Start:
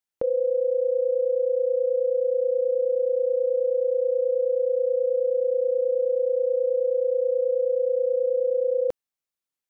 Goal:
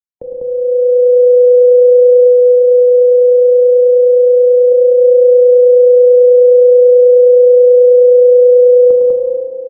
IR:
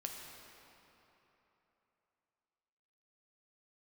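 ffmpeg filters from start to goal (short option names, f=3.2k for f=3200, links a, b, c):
-filter_complex "[0:a]dynaudnorm=f=110:g=13:m=11.5dB,asettb=1/sr,asplit=3[a][b][c];[a]atrim=end=2.274[d];[b]atrim=start=2.27:end=4.72,asetpts=PTS-STARTPTS,afade=t=in:d=0.004:c=qsin,afade=t=out:st=2.446:d=0.004:c=qsin,aemphasis=mode=production:type=riaa[e];[c]atrim=start=4.716[f];[d][e]acrossfade=d=0.004:c1=hsin:c2=qsin[g];[g][f]acrossfade=d=0.004:c1=qsin:c2=hsin,acrossover=split=240|620[h][i][j];[h]acompressor=threshold=-41dB:ratio=4[k];[i]acompressor=threshold=-11dB:ratio=4[l];[j]acompressor=threshold=-21dB:ratio=4[m];[k][l][m]amix=inputs=3:normalize=0,lowshelf=f=320:g=11.5,aecho=1:1:107.9|198.3:0.447|0.794[n];[1:a]atrim=start_sample=2205[o];[n][o]afir=irnorm=-1:irlink=0,afftdn=nr=12:nf=-40,volume=-2dB"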